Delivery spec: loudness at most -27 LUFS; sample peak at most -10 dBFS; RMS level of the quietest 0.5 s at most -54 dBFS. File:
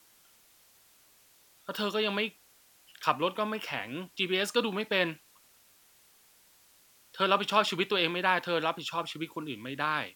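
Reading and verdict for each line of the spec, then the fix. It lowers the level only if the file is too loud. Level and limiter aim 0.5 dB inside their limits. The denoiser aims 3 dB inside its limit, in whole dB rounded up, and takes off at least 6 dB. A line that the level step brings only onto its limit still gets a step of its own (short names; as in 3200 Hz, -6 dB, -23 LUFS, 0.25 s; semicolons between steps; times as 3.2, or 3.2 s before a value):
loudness -30.0 LUFS: OK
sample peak -8.5 dBFS: fail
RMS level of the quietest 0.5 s -62 dBFS: OK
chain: limiter -10.5 dBFS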